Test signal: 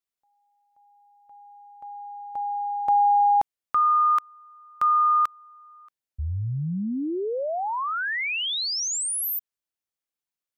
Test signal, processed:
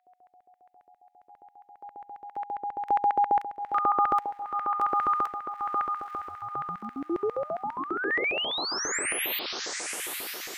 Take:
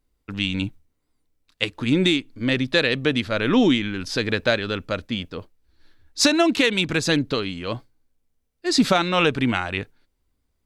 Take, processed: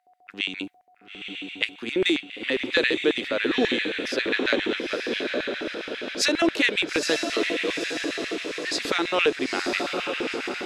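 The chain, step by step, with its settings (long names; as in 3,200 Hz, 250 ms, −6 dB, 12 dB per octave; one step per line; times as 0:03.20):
feedback delay with all-pass diffusion 916 ms, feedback 55%, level −4 dB
steady tone 730 Hz −51 dBFS
auto-filter high-pass square 7.4 Hz 370–1,900 Hz
level −5.5 dB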